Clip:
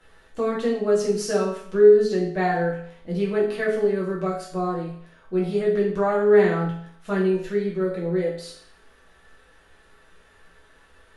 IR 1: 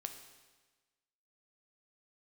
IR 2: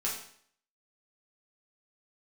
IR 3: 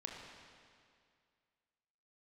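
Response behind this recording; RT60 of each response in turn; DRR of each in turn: 2; 1.3, 0.60, 2.2 seconds; 6.0, −5.5, −0.5 decibels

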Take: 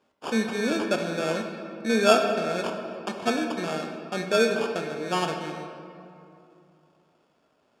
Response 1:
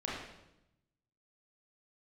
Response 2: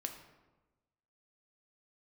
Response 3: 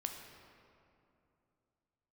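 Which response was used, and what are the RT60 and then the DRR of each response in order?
3; 0.90, 1.2, 2.7 seconds; −6.0, 4.5, 3.0 decibels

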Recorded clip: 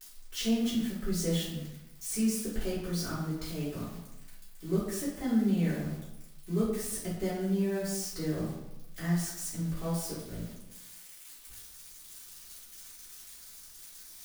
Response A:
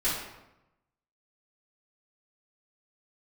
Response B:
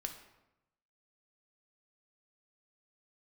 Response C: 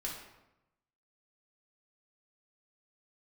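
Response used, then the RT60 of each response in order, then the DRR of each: A; 0.90, 0.90, 0.90 seconds; −13.0, 4.0, −4.0 decibels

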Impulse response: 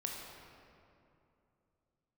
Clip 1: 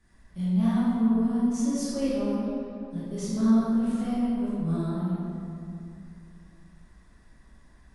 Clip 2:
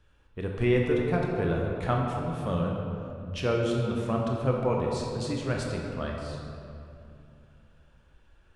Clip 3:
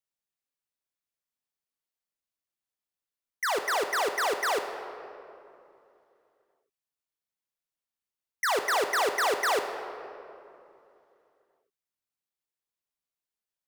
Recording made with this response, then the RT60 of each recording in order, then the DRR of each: 2; 2.7, 2.7, 2.8 seconds; −10.0, −1.0, 6.5 decibels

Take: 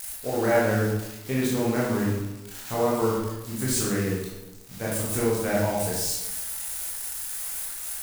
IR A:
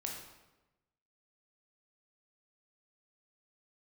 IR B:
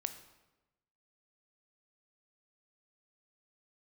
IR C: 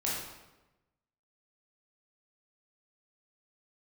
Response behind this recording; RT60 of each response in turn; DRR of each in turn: C; 1.1, 1.1, 1.1 seconds; −0.5, 9.0, −6.0 decibels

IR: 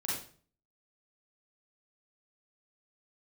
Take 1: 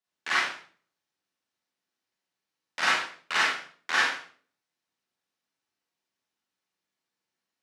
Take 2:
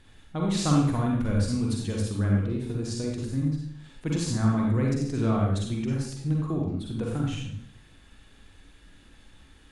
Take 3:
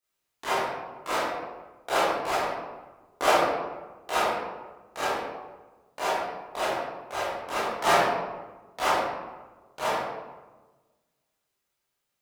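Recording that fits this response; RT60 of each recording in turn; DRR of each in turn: 1; 0.45, 0.65, 1.3 seconds; −7.0, −2.0, −12.5 decibels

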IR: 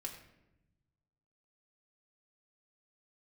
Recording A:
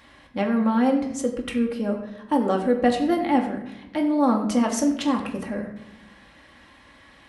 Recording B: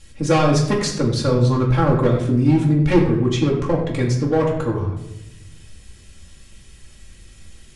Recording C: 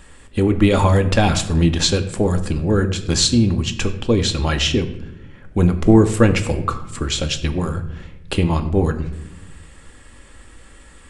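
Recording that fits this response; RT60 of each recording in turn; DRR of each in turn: A; 0.90, 0.90, 0.95 seconds; 0.0, −4.0, 6.0 decibels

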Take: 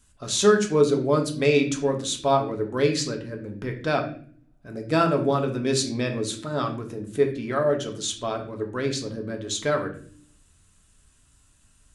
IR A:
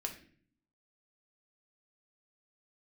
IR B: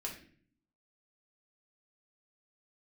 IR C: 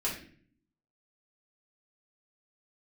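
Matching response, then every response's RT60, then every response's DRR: A; 0.50, 0.50, 0.50 seconds; 2.5, −2.0, −6.5 decibels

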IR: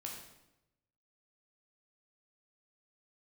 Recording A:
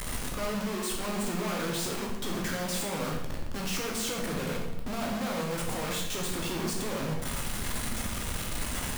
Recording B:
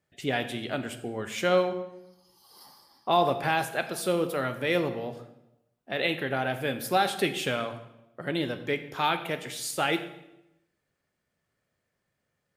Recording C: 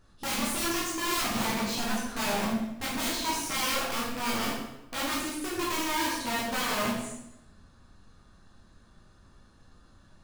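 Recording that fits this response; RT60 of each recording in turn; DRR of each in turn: A; 0.90, 0.90, 0.90 seconds; −1.0, 8.5, −6.5 decibels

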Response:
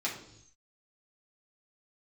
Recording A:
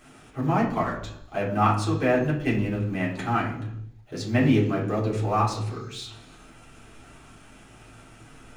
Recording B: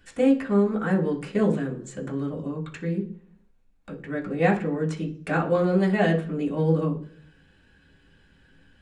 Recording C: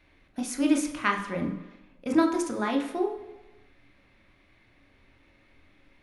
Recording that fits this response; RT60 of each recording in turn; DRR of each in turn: A; non-exponential decay, 0.50 s, 1.2 s; −5.5, −5.0, 2.5 decibels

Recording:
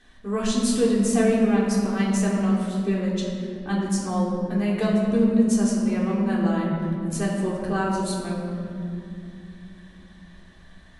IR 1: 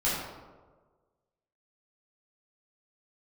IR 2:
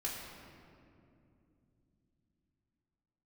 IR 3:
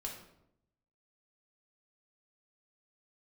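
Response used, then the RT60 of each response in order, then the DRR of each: 2; 1.4, 2.7, 0.80 seconds; −9.5, −6.0, −1.0 decibels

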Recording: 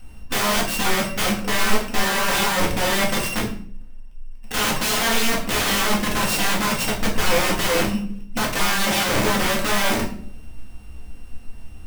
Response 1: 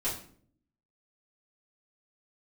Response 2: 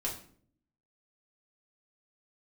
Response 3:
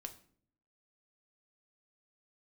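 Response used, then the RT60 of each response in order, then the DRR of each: 2; 0.55, 0.55, 0.55 seconds; −10.5, −4.0, 5.5 decibels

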